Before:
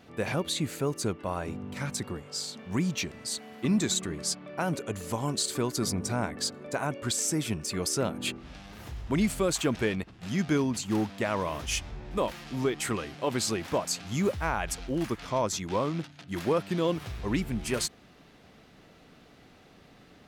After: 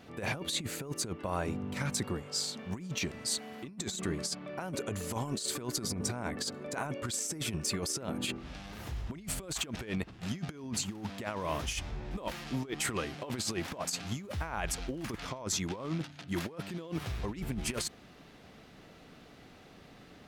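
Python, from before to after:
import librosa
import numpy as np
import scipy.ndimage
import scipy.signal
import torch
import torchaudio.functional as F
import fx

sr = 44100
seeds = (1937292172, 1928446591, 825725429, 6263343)

y = fx.over_compress(x, sr, threshold_db=-32.0, ratio=-0.5)
y = y * librosa.db_to_amplitude(-2.5)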